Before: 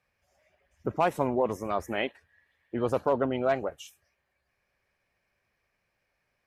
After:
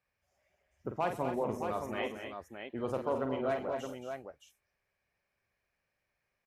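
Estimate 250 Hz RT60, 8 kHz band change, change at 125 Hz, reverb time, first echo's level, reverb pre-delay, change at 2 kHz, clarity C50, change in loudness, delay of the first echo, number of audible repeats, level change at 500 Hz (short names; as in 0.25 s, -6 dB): none, n/a, -6.0 dB, none, -7.5 dB, none, -6.0 dB, none, -7.0 dB, 46 ms, 5, -6.0 dB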